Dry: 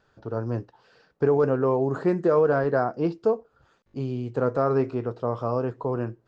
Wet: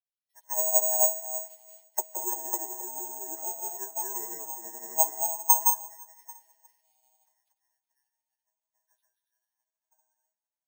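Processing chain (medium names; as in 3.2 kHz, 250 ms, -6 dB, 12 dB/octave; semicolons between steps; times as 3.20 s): split-band scrambler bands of 500 Hz; auto-wah 330–3300 Hz, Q 3.7, down, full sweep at -21.5 dBFS; tilt shelf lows -7.5 dB, about 1.3 kHz; high-pass sweep 400 Hz -> 4 kHz, 2.65–4.21 s; de-hum 82.54 Hz, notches 19; on a send: tape echo 191 ms, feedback 47%, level -7 dB, low-pass 2.7 kHz; on the sum: granulator, pitch spread up and down by 0 st; in parallel at +1 dB: compression, threshold -52 dBFS, peak gain reduction 22.5 dB; on the sum: time stretch by phase-locked vocoder 1.7×; careless resampling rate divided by 6×, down none, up zero stuff; three bands expanded up and down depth 100%; trim -3.5 dB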